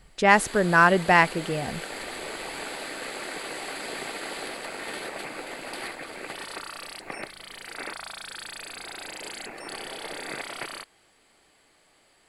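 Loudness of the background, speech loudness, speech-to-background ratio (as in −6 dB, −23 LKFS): −36.0 LKFS, −20.0 LKFS, 16.0 dB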